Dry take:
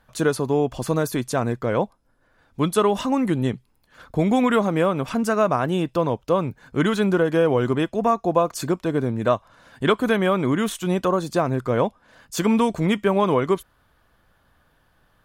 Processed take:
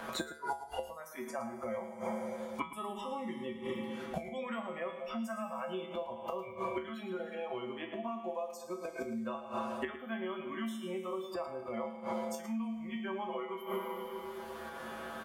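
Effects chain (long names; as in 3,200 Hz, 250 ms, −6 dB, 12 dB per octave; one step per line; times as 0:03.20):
compressor on every frequency bin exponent 0.6
in parallel at −2 dB: brickwall limiter −10.5 dBFS, peak gain reduction 7.5 dB
on the sum: noise reduction from a noise print of the clip's start 28 dB
fake sidechain pumping 98 BPM, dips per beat 1, −6 dB, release 181 ms
mains-hum notches 50/100/150/200/250/300/350 Hz
four-comb reverb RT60 1.5 s, combs from 28 ms, DRR 9 dB
gate with flip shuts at −17 dBFS, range −26 dB
low-shelf EQ 220 Hz −9 dB
tuned comb filter 75 Hz, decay 0.27 s, harmonics odd, mix 90%
single-tap delay 108 ms −12.5 dB
multiband upward and downward compressor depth 100%
level +10.5 dB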